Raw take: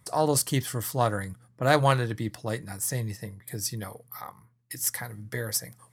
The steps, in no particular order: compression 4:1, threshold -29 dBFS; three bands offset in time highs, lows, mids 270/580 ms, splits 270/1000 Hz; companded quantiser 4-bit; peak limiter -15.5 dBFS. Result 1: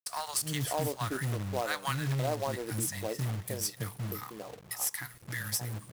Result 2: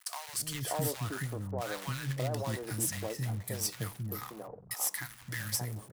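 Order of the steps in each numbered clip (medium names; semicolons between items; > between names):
three bands offset in time > companded quantiser > compression > peak limiter; peak limiter > companded quantiser > compression > three bands offset in time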